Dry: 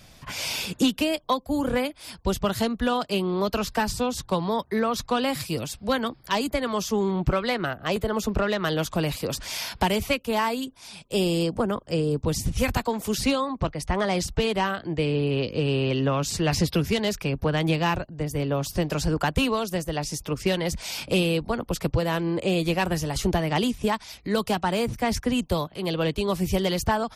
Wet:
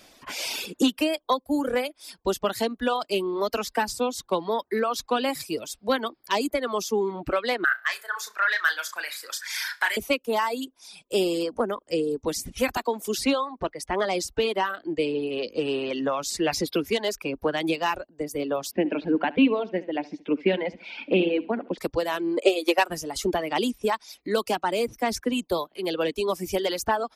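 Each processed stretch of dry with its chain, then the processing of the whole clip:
0:07.64–0:09.97: high-pass with resonance 1,600 Hz, resonance Q 4 + parametric band 2,800 Hz −9 dB 0.3 octaves + flutter between parallel walls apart 5.7 metres, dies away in 0.31 s
0:18.71–0:21.78: loudspeaker in its box 150–2,900 Hz, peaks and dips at 200 Hz +8 dB, 280 Hz +8 dB, 1,200 Hz −9 dB, 2,300 Hz +4 dB + flutter between parallel walls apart 12 metres, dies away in 0.42 s
0:22.37–0:22.90: high-pass filter 290 Hz 24 dB per octave + transient designer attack +10 dB, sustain −1 dB
whole clip: reverb reduction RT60 1.8 s; low shelf with overshoot 200 Hz −13.5 dB, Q 1.5

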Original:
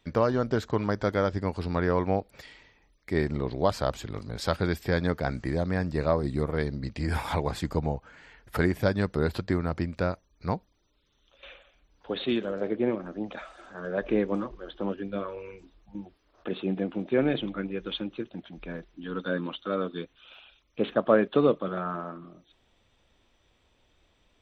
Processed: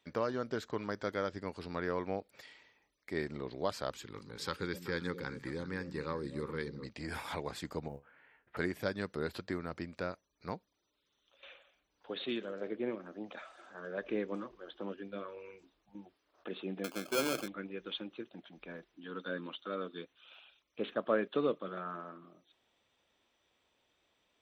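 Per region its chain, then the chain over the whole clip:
0:03.90–0:06.86: Butterworth band-reject 660 Hz, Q 2.5 + echo through a band-pass that steps 127 ms, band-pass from 170 Hz, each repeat 1.4 octaves, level −6.5 dB
0:07.88–0:08.57: low-pass filter 2,700 Hz 24 dB per octave + tuned comb filter 70 Hz, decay 0.17 s, mix 80% + floating-point word with a short mantissa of 6 bits
0:16.84–0:17.48: hard clipping −22.5 dBFS + parametric band 630 Hz +9.5 dB 1 octave + sample-rate reduction 1,900 Hz
whole clip: high-pass filter 360 Hz 6 dB per octave; dynamic equaliser 790 Hz, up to −5 dB, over −43 dBFS, Q 1.5; level −6 dB

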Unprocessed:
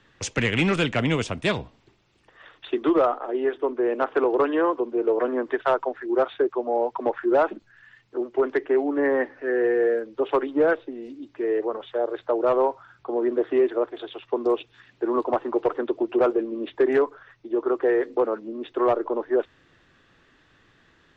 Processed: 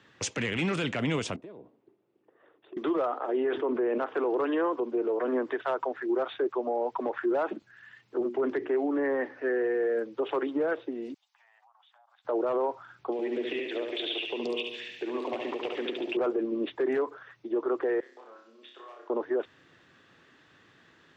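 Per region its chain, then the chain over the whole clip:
0:01.36–0:02.77: resonant band-pass 380 Hz, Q 1.8 + downward compressor 12 to 1, threshold −41 dBFS
0:03.37–0:03.98: low-pass filter 3,400 Hz + envelope flattener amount 50%
0:08.19–0:08.69: low-shelf EQ 230 Hz +12 dB + mains-hum notches 60/120/180/240/300/360 Hz
0:11.14–0:12.25: Butterworth high-pass 760 Hz 72 dB per octave + parametric band 1,800 Hz −13.5 dB 2.6 octaves + downward compressor 8 to 1, threshold −59 dBFS
0:13.12–0:16.17: high shelf with overshoot 1,800 Hz +10.5 dB, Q 3 + downward compressor 10 to 1, threshold −29 dBFS + repeating echo 71 ms, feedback 58%, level −5 dB
0:18.00–0:19.10: resonant band-pass 6,300 Hz, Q 0.87 + downward compressor, threshold −47 dBFS + flutter between parallel walls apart 5.3 metres, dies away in 0.57 s
whole clip: high-pass filter 120 Hz 12 dB per octave; brickwall limiter −21 dBFS

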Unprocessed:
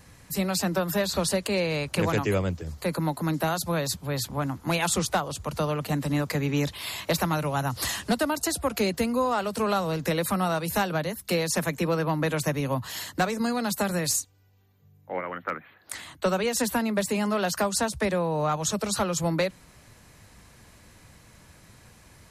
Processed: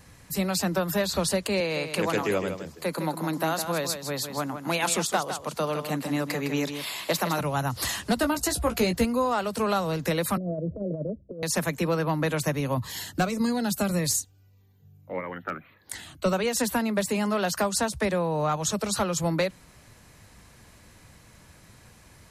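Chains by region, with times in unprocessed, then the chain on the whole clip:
0:01.60–0:07.41: high-pass filter 210 Hz + single-tap delay 159 ms −8.5 dB
0:08.16–0:09.05: low-shelf EQ 100 Hz +10 dB + double-tracking delay 17 ms −6.5 dB
0:10.37–0:11.43: Chebyshev low-pass filter 650 Hz, order 8 + compressor whose output falls as the input rises −30 dBFS, ratio −0.5
0:12.77–0:16.33: low-shelf EQ 210 Hz +5 dB + phaser whose notches keep moving one way falling 1.7 Hz
whole clip: no processing

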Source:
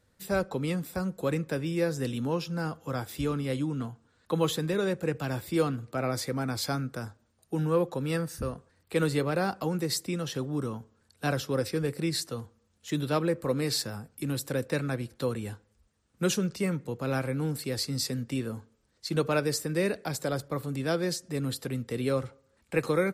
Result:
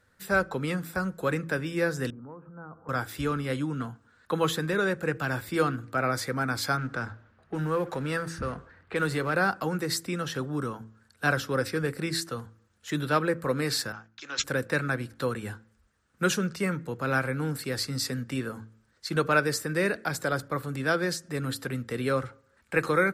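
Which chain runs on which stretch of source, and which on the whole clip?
0:02.10–0:02.89: Butterworth low-pass 1,300 Hz + downward compressor 4 to 1, threshold −44 dBFS + one half of a high-frequency compander encoder only
0:06.77–0:09.34: mu-law and A-law mismatch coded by mu + low-pass that shuts in the quiet parts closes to 2,000 Hz, open at −23.5 dBFS + downward compressor 1.5 to 1, threshold −30 dBFS
0:13.92–0:14.44: high-pass filter 710 Hz + bad sample-rate conversion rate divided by 3×, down none, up filtered + multiband upward and downward expander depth 100%
whole clip: parametric band 1,500 Hz +10.5 dB 0.86 octaves; hum removal 55.3 Hz, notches 6

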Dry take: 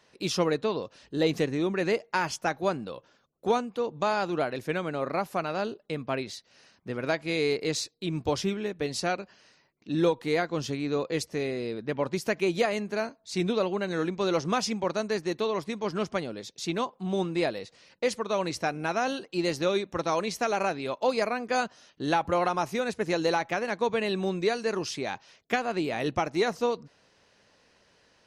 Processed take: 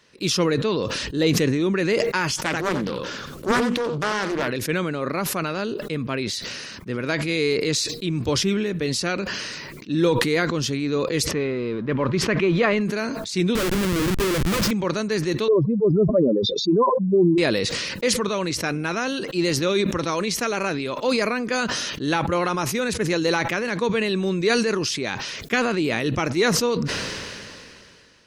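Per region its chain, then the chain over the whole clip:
0:02.44–0:04.48: upward compression, threshold −30 dBFS + single-tap delay 89 ms −11 dB + highs frequency-modulated by the lows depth 0.76 ms
0:11.31–0:12.81: mu-law and A-law mismatch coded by mu + low-pass filter 2,700 Hz + parametric band 1,100 Hz +4.5 dB 0.37 octaves
0:13.55–0:14.71: comb filter 5.8 ms, depth 54% + comparator with hysteresis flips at −29 dBFS
0:15.48–0:17.38: expanding power law on the bin magnitudes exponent 3.3 + low-pass filter 2,700 Hz + parametric band 620 Hz +10.5 dB 2 octaves
whole clip: parametric band 740 Hz −10.5 dB 0.72 octaves; level that may fall only so fast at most 24 dB per second; level +6 dB

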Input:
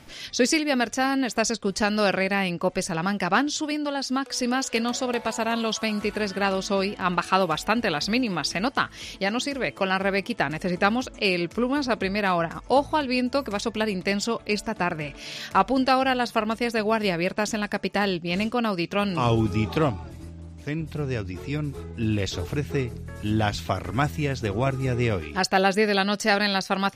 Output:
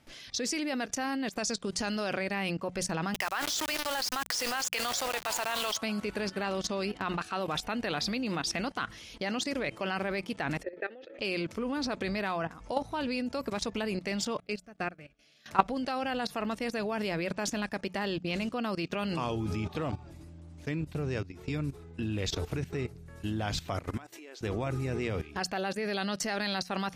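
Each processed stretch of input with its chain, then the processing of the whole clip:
0:01.37–0:01.96: low-pass filter 9,600 Hz + high-shelf EQ 5,500 Hz +9.5 dB + downward compressor, threshold −23 dBFS
0:03.14–0:05.77: high-pass filter 760 Hz + bit-depth reduction 6 bits, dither none + envelope flattener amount 50%
0:10.63–0:11.19: formant filter e + loudspeaker in its box 160–4,000 Hz, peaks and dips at 210 Hz −9 dB, 360 Hz +9 dB, 580 Hz −6 dB, 1,200 Hz +9 dB, 2,900 Hz −9 dB + envelope flattener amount 50%
0:14.40–0:15.46: Butterworth band-reject 960 Hz, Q 3.9 + expander for the loud parts 2.5 to 1, over −36 dBFS
0:23.97–0:24.41: linear-phase brick-wall high-pass 270 Hz + downward compressor 4 to 1, threshold −38 dBFS
whole clip: mains-hum notches 60/120/180 Hz; output level in coarse steps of 16 dB

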